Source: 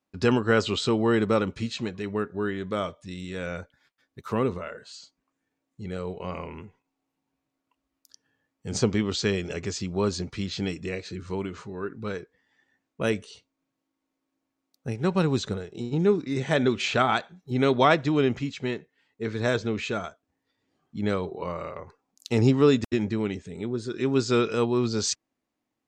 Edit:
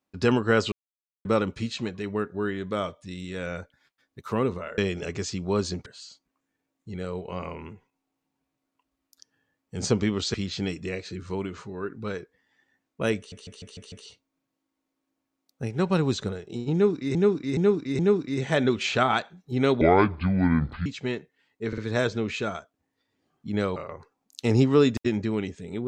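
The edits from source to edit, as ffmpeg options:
-filter_complex "[0:a]asplit=19[s0][s1][s2][s3][s4][s5][s6][s7][s8][s9][s10][s11][s12][s13][s14][s15][s16][s17][s18];[s0]atrim=end=0.72,asetpts=PTS-STARTPTS,afade=t=out:st=0.716:d=0.004:c=hsin[s19];[s1]atrim=start=0.72:end=1.25,asetpts=PTS-STARTPTS,volume=0[s20];[s2]atrim=start=1.25:end=4.782,asetpts=PTS-STARTPTS,afade=t=in:d=0.004:c=hsin[s21];[s3]atrim=start=9.258:end=10.342[s22];[s4]atrim=start=4.778:end=9.262[s23];[s5]atrim=start=10.338:end=13.322[s24];[s6]atrim=start=13.168:end=13.322[s25];[s7]atrim=start=13.168:end=13.322[s26];[s8]atrim=start=13.168:end=13.322[s27];[s9]atrim=start=13.168:end=13.322[s28];[s10]atrim=start=13.168:end=16.402[s29];[s11]atrim=start=15.978:end=16.402[s30];[s12]atrim=start=15.978:end=16.402[s31];[s13]atrim=start=15.978:end=17.804[s32];[s14]atrim=start=17.8:end=18.45,asetpts=PTS-STARTPTS,asetrate=27342,aresample=44100[s33];[s15]atrim=start=18.446:end=19.322[s34];[s16]atrim=start=19.268:end=19.322[s35];[s17]atrim=start=19.268:end=21.252[s36];[s18]atrim=start=21.628[s37];[s19][s20][s21]concat=n=3:v=0:a=1[s38];[s38][s22]acrossfade=d=0.004:c1=hsin:c2=hsin[s39];[s39][s23]acrossfade=d=0.004:c1=hsin:c2=hsin[s40];[s40][s24]acrossfade=d=0.004:c1=hsin:c2=hsin[s41];[s41][s25]acrossfade=d=0.004:c1=hsin:c2=hsin[s42];[s42][s26]acrossfade=d=0.004:c1=hsin:c2=hsin[s43];[s43][s27]acrossfade=d=0.004:c1=hsin:c2=hsin[s44];[s44][s28]acrossfade=d=0.004:c1=hsin:c2=hsin[s45];[s45][s29]acrossfade=d=0.004:c1=hsin:c2=hsin[s46];[s46][s30]acrossfade=d=0.004:c1=hsin:c2=hsin[s47];[s47][s31]acrossfade=d=0.004:c1=hsin:c2=hsin[s48];[s48][s32]acrossfade=d=0.004:c1=hsin:c2=hsin[s49];[s49][s33]acrossfade=d=0.004:c1=hsin:c2=hsin[s50];[s50][s34]acrossfade=d=0.004:c1=hsin:c2=hsin[s51];[s51][s35]acrossfade=d=0.004:c1=hsin:c2=hsin[s52];[s52][s36]acrossfade=d=0.004:c1=hsin:c2=hsin[s53];[s53][s37]acrossfade=d=0.004:c1=hsin:c2=hsin"

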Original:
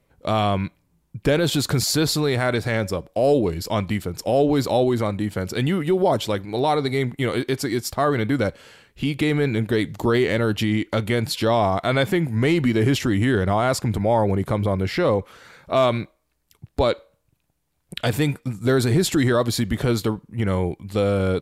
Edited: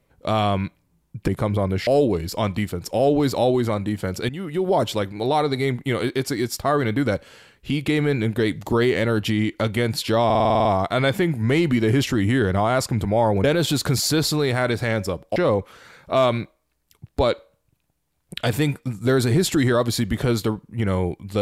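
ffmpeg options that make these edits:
-filter_complex "[0:a]asplit=14[s0][s1][s2][s3][s4][s5][s6][s7][s8][s9][s10][s11][s12][s13];[s0]atrim=end=1.282[s14];[s1]atrim=start=14.368:end=14.962[s15];[s2]atrim=start=3.198:end=5.62,asetpts=PTS-STARTPTS,afade=t=out:st=2.418:d=0.004:c=hsin:silence=0.177828[s16];[s3]atrim=start=5.62:end=11.632,asetpts=PTS-STARTPTS,afade=t=in:d=0.5:silence=0.177828[s17];[s4]atrim=start=11.578:end=11.632[s18];[s5]atrim=start=11.578:end=11.632[s19];[s6]atrim=start=11.578:end=11.632[s20];[s7]atrim=start=11.578:end=11.632[s21];[s8]atrim=start=11.578:end=11.632[s22];[s9]atrim=start=11.578:end=11.632[s23];[s10]atrim=start=11.578:end=11.632[s24];[s11]atrim=start=11.578:end=14.372[s25];[s12]atrim=start=1.278:end=3.202[s26];[s13]atrim=start=14.958[s27];[s14][s15]acrossfade=d=0.004:c1=hsin:c2=hsin[s28];[s16][s17]concat=n=2:v=0:a=1[s29];[s28][s29]acrossfade=d=0.004:c1=hsin:c2=hsin[s30];[s30][s18]acrossfade=d=0.004:c1=hsin:c2=hsin[s31];[s31][s19]acrossfade=d=0.004:c1=hsin:c2=hsin[s32];[s32][s20]acrossfade=d=0.004:c1=hsin:c2=hsin[s33];[s33][s21]acrossfade=d=0.004:c1=hsin:c2=hsin[s34];[s34][s22]acrossfade=d=0.004:c1=hsin:c2=hsin[s35];[s35][s23]acrossfade=d=0.004:c1=hsin:c2=hsin[s36];[s36][s24]acrossfade=d=0.004:c1=hsin:c2=hsin[s37];[s37][s25]acrossfade=d=0.004:c1=hsin:c2=hsin[s38];[s38][s26]acrossfade=d=0.004:c1=hsin:c2=hsin[s39];[s39][s27]acrossfade=d=0.004:c1=hsin:c2=hsin"

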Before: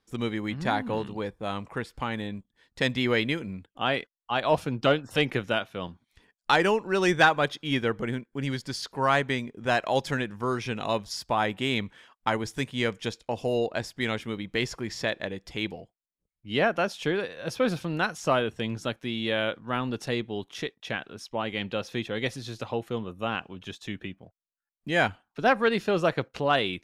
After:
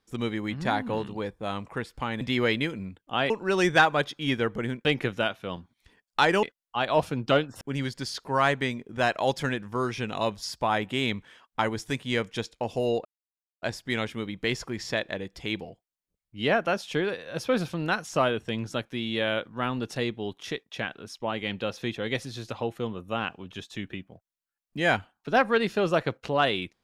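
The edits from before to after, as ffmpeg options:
-filter_complex "[0:a]asplit=7[s0][s1][s2][s3][s4][s5][s6];[s0]atrim=end=2.212[s7];[s1]atrim=start=2.888:end=3.982[s8];[s2]atrim=start=6.738:end=8.292[s9];[s3]atrim=start=5.158:end=6.742[s10];[s4]atrim=start=3.978:end=5.162[s11];[s5]atrim=start=8.288:end=13.73,asetpts=PTS-STARTPTS,afade=t=out:st=5.438:d=0.004:c=hsin,apad=pad_dur=0.57[s12];[s6]atrim=start=13.73,asetpts=PTS-STARTPTS,afade=t=in:d=0.004:c=hsin[s13];[s7][s8]acrossfade=d=0.004:c1=hsin:c2=hsin[s14];[s14][s9]acrossfade=d=0.004:c1=hsin:c2=hsin[s15];[s15][s10]acrossfade=d=0.004:c1=hsin:c2=hsin[s16];[s16][s11]acrossfade=d=0.004:c1=hsin:c2=hsin[s17];[s12][s13]concat=n=2:v=0:a=1[s18];[s17][s18]acrossfade=d=0.004:c1=hsin:c2=hsin"

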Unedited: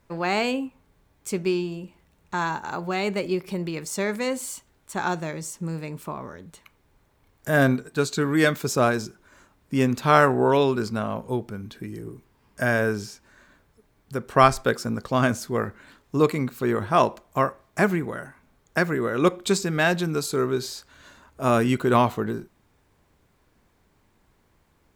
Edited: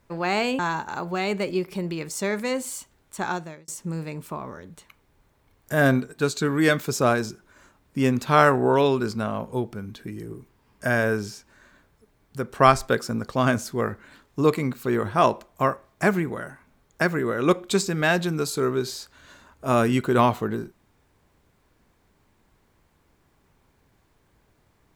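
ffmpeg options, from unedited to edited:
-filter_complex "[0:a]asplit=3[s0][s1][s2];[s0]atrim=end=0.592[s3];[s1]atrim=start=2.348:end=5.44,asetpts=PTS-STARTPTS,afade=t=out:st=2.622:d=0.47[s4];[s2]atrim=start=5.44,asetpts=PTS-STARTPTS,afade=t=in:d=0.004:c=hsin[s5];[s4][s5]concat=n=2:v=0:a=1[s6];[s3][s6]acrossfade=d=0.004:c1=hsin:c2=hsin"

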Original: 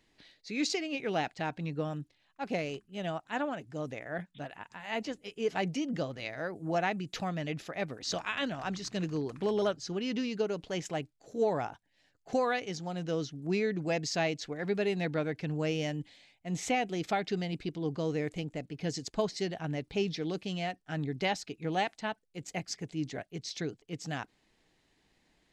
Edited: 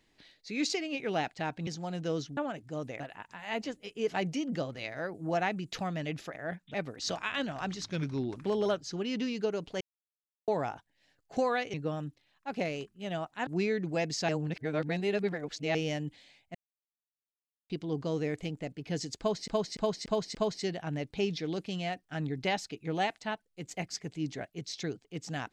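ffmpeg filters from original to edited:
-filter_complex "[0:a]asplit=20[s0][s1][s2][s3][s4][s5][s6][s7][s8][s9][s10][s11][s12][s13][s14][s15][s16][s17][s18][s19];[s0]atrim=end=1.672[s20];[s1]atrim=start=12.698:end=13.402[s21];[s2]atrim=start=3.398:end=4.032[s22];[s3]atrim=start=4.408:end=7.772[s23];[s4]atrim=start=4.028:end=4.412[s24];[s5]atrim=start=7.768:end=8.874[s25];[s6]atrim=start=8.87:end=9.32,asetpts=PTS-STARTPTS,asetrate=38367,aresample=44100,atrim=end_sample=22810,asetpts=PTS-STARTPTS[s26];[s7]atrim=start=9.316:end=10.77,asetpts=PTS-STARTPTS,afade=t=out:st=1.45:d=0.004:c=hsin[s27];[s8]atrim=start=10.77:end=11.44,asetpts=PTS-STARTPTS,volume=0[s28];[s9]atrim=start=11.44:end=12.702,asetpts=PTS-STARTPTS,afade=t=in:d=0.004:c=hsin[s29];[s10]atrim=start=1.668:end=3.402[s30];[s11]atrim=start=13.398:end=14.222[s31];[s12]atrim=start=14.218:end=15.682,asetpts=PTS-STARTPTS,areverse[s32];[s13]atrim=start=15.678:end=16.48,asetpts=PTS-STARTPTS,afade=t=out:st=0.798:d=0.004:c=hsin[s33];[s14]atrim=start=16.48:end=17.63,asetpts=PTS-STARTPTS,volume=0[s34];[s15]atrim=start=17.63:end=19.412,asetpts=PTS-STARTPTS,afade=t=in:d=0.004:c=hsin[s35];[s16]atrim=start=19.118:end=19.412[s36];[s17]atrim=start=19.118:end=19.412[s37];[s18]atrim=start=19.118:end=19.412[s38];[s19]atrim=start=19.118[s39];[s20][s21]acrossfade=d=0.004:c1=hsin:c2=hsin[s40];[s40][s22]acrossfade=d=0.004:c1=hsin:c2=hsin[s41];[s41][s23]acrossfade=d=0.004:c1=hsin:c2=hsin[s42];[s42][s24]acrossfade=d=0.004:c1=hsin:c2=hsin[s43];[s43][s25]acrossfade=d=0.004:c1=hsin:c2=hsin[s44];[s44][s26]acrossfade=d=0.004:c1=hsin:c2=hsin[s45];[s27][s28][s29]concat=n=3:v=0:a=1[s46];[s45][s46]acrossfade=d=0.004:c1=hsin:c2=hsin[s47];[s47][s30]acrossfade=d=0.004:c1=hsin:c2=hsin[s48];[s48][s31]acrossfade=d=0.004:c1=hsin:c2=hsin[s49];[s49][s32]acrossfade=d=0.004:c1=hsin:c2=hsin[s50];[s33][s34][s35]concat=n=3:v=0:a=1[s51];[s50][s51]acrossfade=d=0.004:c1=hsin:c2=hsin[s52];[s52][s36]acrossfade=d=0.004:c1=hsin:c2=hsin[s53];[s53][s37]acrossfade=d=0.004:c1=hsin:c2=hsin[s54];[s54][s38]acrossfade=d=0.004:c1=hsin:c2=hsin[s55];[s55][s39]acrossfade=d=0.004:c1=hsin:c2=hsin"

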